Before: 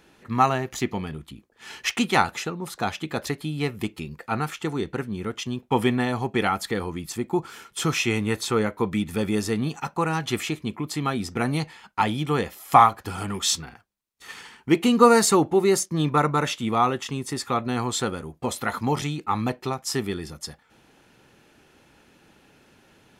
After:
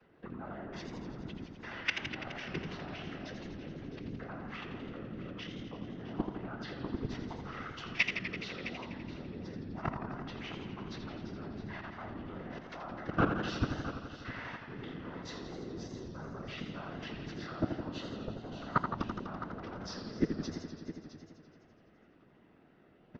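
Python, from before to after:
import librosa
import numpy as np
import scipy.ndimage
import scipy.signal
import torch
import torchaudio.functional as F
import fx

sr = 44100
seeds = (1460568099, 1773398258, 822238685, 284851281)

y = fx.chord_vocoder(x, sr, chord='major triad', root=52)
y = scipy.signal.sosfilt(scipy.signal.ellip(4, 1.0, 50, 5600.0, 'lowpass', fs=sr, output='sos'), y)
y = fx.high_shelf(y, sr, hz=3400.0, db=-10.5)
y = fx.over_compress(y, sr, threshold_db=-35.0, ratio=-1.0)
y = fx.resonator_bank(y, sr, root=38, chord='minor', decay_s=0.27)
y = fx.level_steps(y, sr, step_db=20)
y = fx.whisperise(y, sr, seeds[0])
y = y + 10.0 ** (-13.5 / 20.0) * np.pad(y, (int(661 * sr / 1000.0), 0))[:len(y)]
y = fx.echo_warbled(y, sr, ms=84, feedback_pct=76, rate_hz=2.8, cents=113, wet_db=-7.5)
y = F.gain(torch.from_numpy(y), 15.5).numpy()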